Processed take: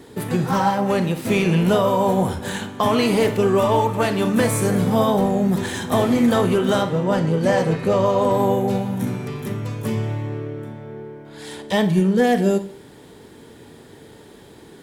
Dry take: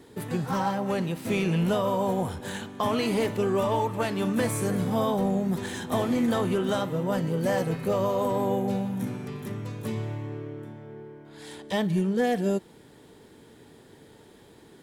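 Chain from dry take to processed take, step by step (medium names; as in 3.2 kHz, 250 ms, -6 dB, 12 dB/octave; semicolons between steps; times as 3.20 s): 6.83–8.31 s: low-pass 7.6 kHz 12 dB/octave; 9.68–10.09 s: band-stop 3.9 kHz, Q 9.5; on a send: reverberation RT60 0.50 s, pre-delay 28 ms, DRR 10 dB; on the sum: trim +7.5 dB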